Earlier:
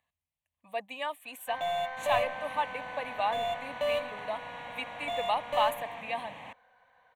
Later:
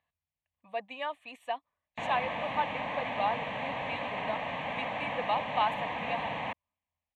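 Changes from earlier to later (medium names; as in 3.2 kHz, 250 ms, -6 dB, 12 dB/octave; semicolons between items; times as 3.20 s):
first sound: muted; second sound +11.0 dB; master: add distance through air 130 m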